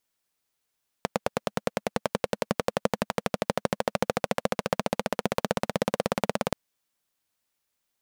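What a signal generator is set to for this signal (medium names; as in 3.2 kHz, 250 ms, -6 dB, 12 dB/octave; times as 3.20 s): single-cylinder engine model, changing speed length 5.48 s, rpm 1100, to 2100, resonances 210/510 Hz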